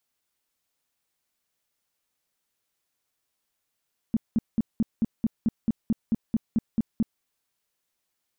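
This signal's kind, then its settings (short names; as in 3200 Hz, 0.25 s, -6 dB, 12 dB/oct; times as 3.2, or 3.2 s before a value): tone bursts 225 Hz, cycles 6, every 0.22 s, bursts 14, -18.5 dBFS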